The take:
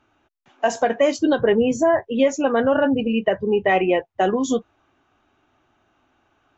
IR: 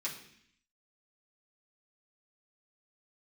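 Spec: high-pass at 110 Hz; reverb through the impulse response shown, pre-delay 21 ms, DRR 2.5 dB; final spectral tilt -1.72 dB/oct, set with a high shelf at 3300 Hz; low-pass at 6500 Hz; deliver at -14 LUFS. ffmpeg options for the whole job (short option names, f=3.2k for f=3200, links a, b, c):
-filter_complex "[0:a]highpass=110,lowpass=6.5k,highshelf=f=3.3k:g=-5.5,asplit=2[a][b];[1:a]atrim=start_sample=2205,adelay=21[c];[b][c]afir=irnorm=-1:irlink=0,volume=-4.5dB[d];[a][d]amix=inputs=2:normalize=0,volume=5dB"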